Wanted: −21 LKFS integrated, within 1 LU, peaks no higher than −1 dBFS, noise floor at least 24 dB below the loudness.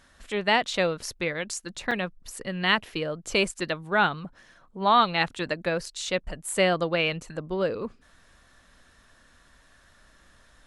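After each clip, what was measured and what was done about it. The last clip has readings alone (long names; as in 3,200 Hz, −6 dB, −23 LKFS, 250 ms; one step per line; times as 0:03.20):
number of dropouts 1; longest dropout 5.2 ms; integrated loudness −26.5 LKFS; sample peak −7.5 dBFS; target loudness −21.0 LKFS
→ repair the gap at 0:01.91, 5.2 ms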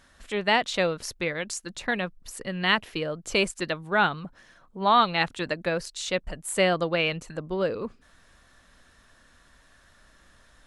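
number of dropouts 0; integrated loudness −26.5 LKFS; sample peak −7.5 dBFS; target loudness −21.0 LKFS
→ level +5.5 dB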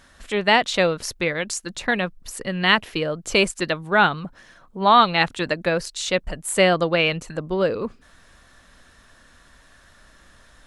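integrated loudness −21.0 LKFS; sample peak −2.0 dBFS; background noise floor −53 dBFS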